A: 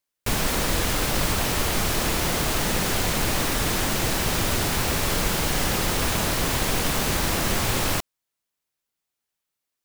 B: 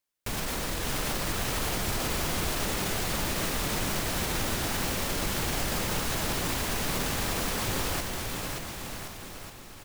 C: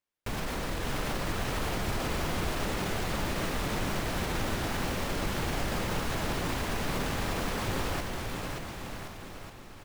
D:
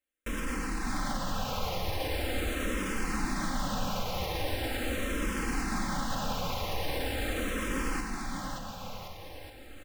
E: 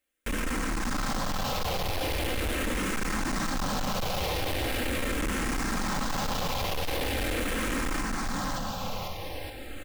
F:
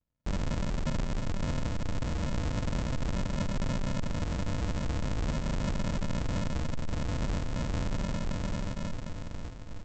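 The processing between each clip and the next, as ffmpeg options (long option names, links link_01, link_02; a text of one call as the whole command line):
ffmpeg -i in.wav -af "alimiter=limit=-20.5dB:level=0:latency=1,aecho=1:1:580|1073|1492|1848|2151:0.631|0.398|0.251|0.158|0.1,volume=-2dB" out.wav
ffmpeg -i in.wav -af "highshelf=frequency=4200:gain=-11" out.wav
ffmpeg -i in.wav -filter_complex "[0:a]aecho=1:1:3.8:0.53,asplit=2[link_01][link_02];[link_02]afreqshift=-0.41[link_03];[link_01][link_03]amix=inputs=2:normalize=1,volume=1dB" out.wav
ffmpeg -i in.wav -af "asoftclip=type=hard:threshold=-35dB,volume=8dB" out.wav
ffmpeg -i in.wav -af "equalizer=frequency=440:width_type=o:width=0.72:gain=-10,aresample=16000,acrusher=samples=41:mix=1:aa=0.000001,aresample=44100" out.wav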